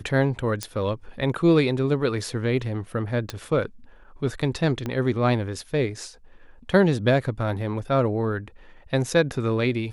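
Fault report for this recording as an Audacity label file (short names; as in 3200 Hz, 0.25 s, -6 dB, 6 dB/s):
0.630000	0.630000	pop -12 dBFS
3.300000	3.300000	pop -15 dBFS
4.860000	4.860000	pop -16 dBFS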